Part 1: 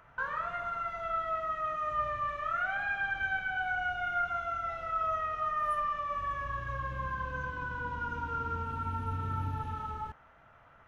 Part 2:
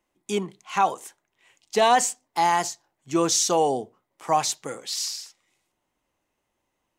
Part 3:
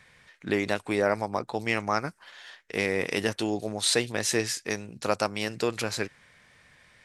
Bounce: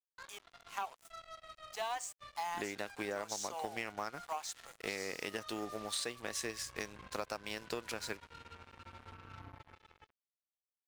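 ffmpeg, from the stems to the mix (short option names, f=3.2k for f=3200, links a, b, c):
-filter_complex "[0:a]volume=-12dB[a];[1:a]highpass=f=660:w=0.5412,highpass=f=660:w=1.3066,volume=-10dB,asplit=2[b][c];[2:a]agate=range=-6dB:threshold=-47dB:ratio=16:detection=peak,lowshelf=f=160:g=-12,asoftclip=type=tanh:threshold=-15.5dB,adelay=2100,volume=-3dB[d];[c]apad=whole_len=479543[e];[a][e]sidechaincompress=threshold=-54dB:ratio=3:attack=9.2:release=112[f];[f][b][d]amix=inputs=3:normalize=0,aeval=exprs='0.2*(cos(1*acos(clip(val(0)/0.2,-1,1)))-cos(1*PI/2))+0.00158*(cos(5*acos(clip(val(0)/0.2,-1,1)))-cos(5*PI/2))+0.0158*(cos(7*acos(clip(val(0)/0.2,-1,1)))-cos(7*PI/2))':c=same,acrusher=bits=7:mix=0:aa=0.5,acompressor=threshold=-35dB:ratio=6"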